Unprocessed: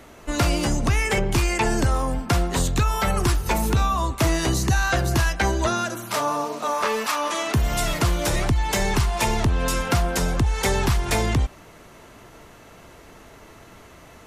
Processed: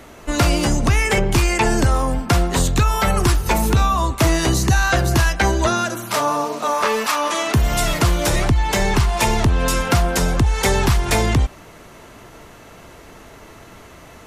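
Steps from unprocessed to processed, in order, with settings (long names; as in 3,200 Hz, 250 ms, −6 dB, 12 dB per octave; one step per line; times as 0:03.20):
0:08.48–0:09.09: parametric band 12,000 Hz −4 dB 1.8 octaves
level +4.5 dB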